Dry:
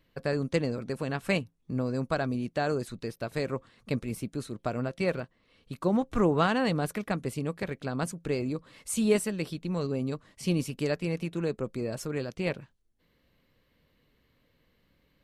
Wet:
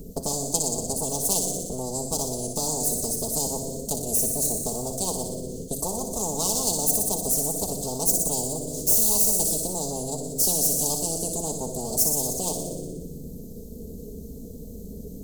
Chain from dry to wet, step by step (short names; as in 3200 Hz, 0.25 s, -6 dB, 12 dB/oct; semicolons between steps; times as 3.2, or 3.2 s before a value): minimum comb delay 4.4 ms; Chebyshev band-stop 480–6600 Hz, order 3; bell 5500 Hz -4 dB 0.23 oct; in parallel at 0 dB: compressor, threshold -42 dBFS, peak gain reduction 20.5 dB; on the sum: bell 78 Hz +6.5 dB; on a send: thin delay 60 ms, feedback 72%, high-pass 3200 Hz, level -6 dB; on the sum: shoebox room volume 2900 m³, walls furnished, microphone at 1.4 m; spectral compressor 10:1; gain +4.5 dB